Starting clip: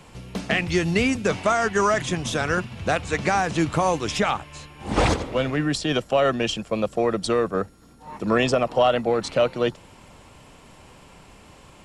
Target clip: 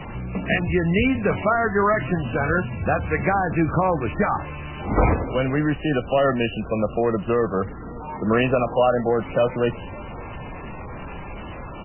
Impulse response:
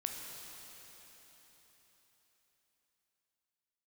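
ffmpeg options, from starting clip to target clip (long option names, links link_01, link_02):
-af "aeval=exprs='val(0)+0.5*0.0282*sgn(val(0))':channel_layout=same,lowshelf=frequency=130:gain=5,aecho=1:1:569:0.0668" -ar 12000 -c:a libmp3lame -b:a 8k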